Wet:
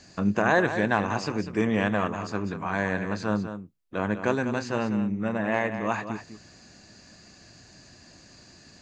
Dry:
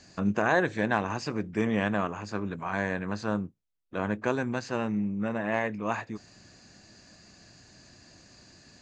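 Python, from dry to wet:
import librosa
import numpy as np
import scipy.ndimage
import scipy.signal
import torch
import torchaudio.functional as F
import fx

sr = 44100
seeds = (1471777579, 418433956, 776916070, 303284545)

y = x + 10.0 ** (-10.0 / 20.0) * np.pad(x, (int(197 * sr / 1000.0), 0))[:len(x)]
y = y * librosa.db_to_amplitude(2.5)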